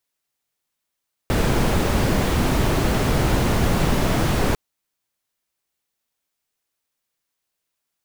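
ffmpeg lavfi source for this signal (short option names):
-f lavfi -i "anoisesrc=c=brown:a=0.556:d=3.25:r=44100:seed=1"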